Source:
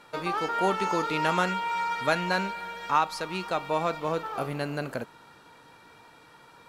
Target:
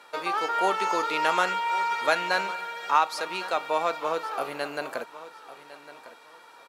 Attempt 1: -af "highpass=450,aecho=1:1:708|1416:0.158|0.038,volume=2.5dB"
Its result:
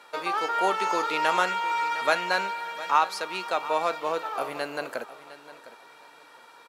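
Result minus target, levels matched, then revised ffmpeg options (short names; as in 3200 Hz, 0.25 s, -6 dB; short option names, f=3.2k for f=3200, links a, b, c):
echo 0.397 s early
-af "highpass=450,aecho=1:1:1105|2210:0.158|0.038,volume=2.5dB"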